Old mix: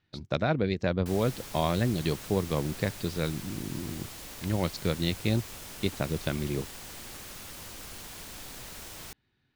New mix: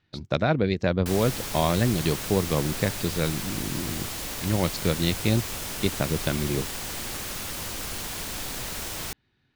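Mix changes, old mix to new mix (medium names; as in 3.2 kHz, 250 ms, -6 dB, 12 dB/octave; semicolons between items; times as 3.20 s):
speech +4.0 dB; background +10.0 dB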